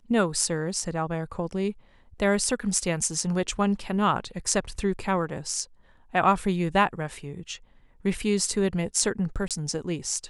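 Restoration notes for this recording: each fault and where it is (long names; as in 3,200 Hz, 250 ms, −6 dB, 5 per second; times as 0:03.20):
0:09.48–0:09.51: drop-out 27 ms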